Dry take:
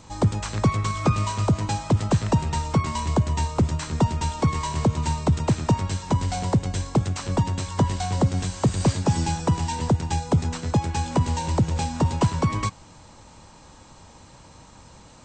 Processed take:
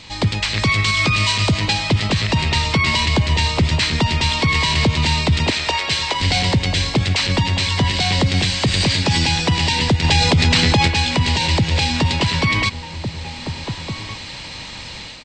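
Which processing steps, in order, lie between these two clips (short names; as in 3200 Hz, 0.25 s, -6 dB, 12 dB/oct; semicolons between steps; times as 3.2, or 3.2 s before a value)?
0.58–1.59 high shelf 6400 Hz +8 dB; 5.5–6.21 HPF 420 Hz 24 dB/oct; band shelf 3000 Hz +15 dB; AGC gain up to 8 dB; outdoor echo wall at 250 m, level -13 dB; maximiser +9 dB; 10.04–10.88 fast leveller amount 70%; gain -6.5 dB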